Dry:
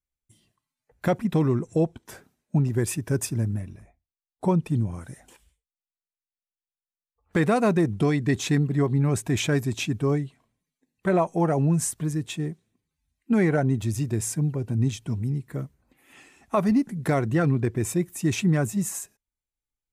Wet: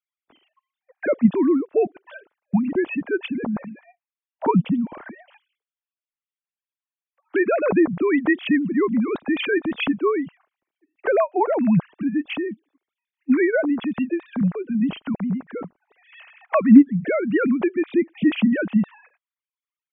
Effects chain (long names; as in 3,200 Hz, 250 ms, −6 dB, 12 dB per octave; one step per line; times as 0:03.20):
three sine waves on the formant tracks
in parallel at +1.5 dB: downward compressor, threshold −33 dBFS, peak gain reduction 23.5 dB
on the sum: level +1.5 dB